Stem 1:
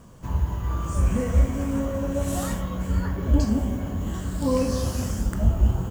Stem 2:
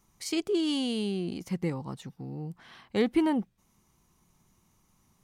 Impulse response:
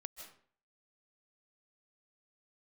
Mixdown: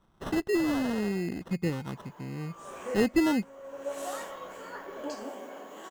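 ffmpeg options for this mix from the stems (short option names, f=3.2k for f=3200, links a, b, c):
-filter_complex "[0:a]highpass=f=410:w=0.5412,highpass=f=410:w=1.3066,adelay=1700,volume=-3.5dB,asplit=2[a][b];[b]volume=-20.5dB[c];[1:a]acrusher=samples=19:mix=1:aa=0.000001,volume=1dB,asplit=2[d][e];[e]apad=whole_len=335255[f];[a][f]sidechaincompress=threshold=-47dB:ratio=5:attack=16:release=352[g];[2:a]atrim=start_sample=2205[h];[c][h]afir=irnorm=-1:irlink=0[i];[g][d][i]amix=inputs=3:normalize=0,highshelf=f=4.9k:g=-8"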